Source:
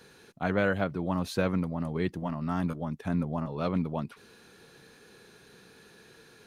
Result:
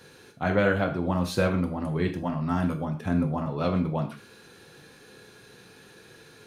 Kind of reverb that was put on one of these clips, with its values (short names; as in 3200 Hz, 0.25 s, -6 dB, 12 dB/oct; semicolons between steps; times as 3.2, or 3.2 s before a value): non-linear reverb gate 0.16 s falling, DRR 4 dB; gain +2.5 dB